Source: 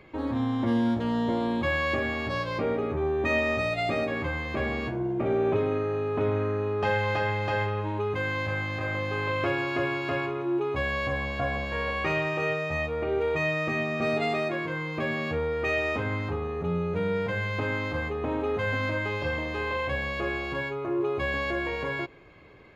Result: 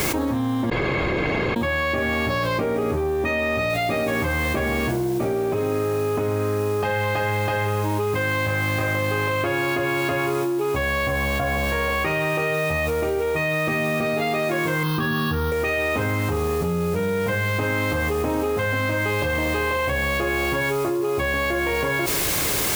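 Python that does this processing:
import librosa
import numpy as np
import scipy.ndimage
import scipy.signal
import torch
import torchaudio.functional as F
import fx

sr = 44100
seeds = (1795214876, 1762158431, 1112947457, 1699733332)

y = fx.noise_floor_step(x, sr, seeds[0], at_s=3.7, before_db=-54, after_db=-48, tilt_db=0.0)
y = fx.fixed_phaser(y, sr, hz=2200.0, stages=6, at=(14.83, 15.52))
y = fx.edit(y, sr, fx.room_tone_fill(start_s=0.7, length_s=0.86), tone=tone)
y = fx.env_flatten(y, sr, amount_pct=100)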